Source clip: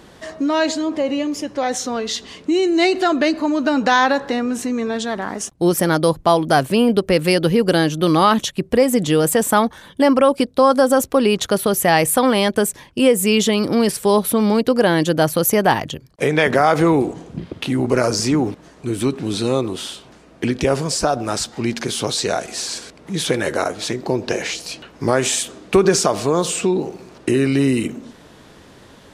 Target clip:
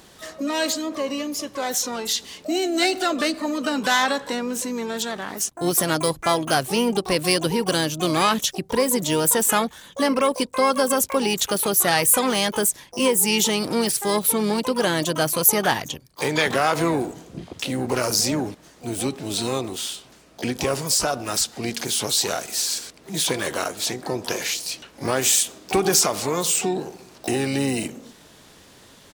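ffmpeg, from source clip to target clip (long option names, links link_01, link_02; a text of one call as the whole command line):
ffmpeg -i in.wav -filter_complex "[0:a]highshelf=frequency=2900:gain=11.5,asplit=3[link_01][link_02][link_03];[link_02]asetrate=35002,aresample=44100,atempo=1.25992,volume=-17dB[link_04];[link_03]asetrate=88200,aresample=44100,atempo=0.5,volume=-9dB[link_05];[link_01][link_04][link_05]amix=inputs=3:normalize=0,volume=-7.5dB" out.wav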